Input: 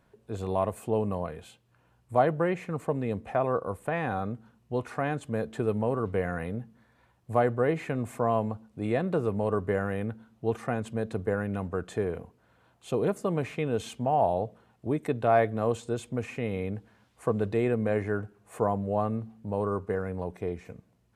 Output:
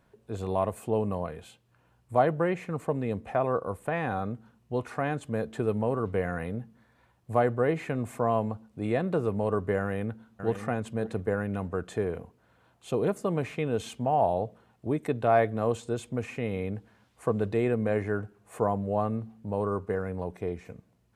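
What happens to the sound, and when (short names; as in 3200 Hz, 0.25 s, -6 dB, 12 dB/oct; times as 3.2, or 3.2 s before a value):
9.8–10.47 echo throw 0.59 s, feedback 20%, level -9 dB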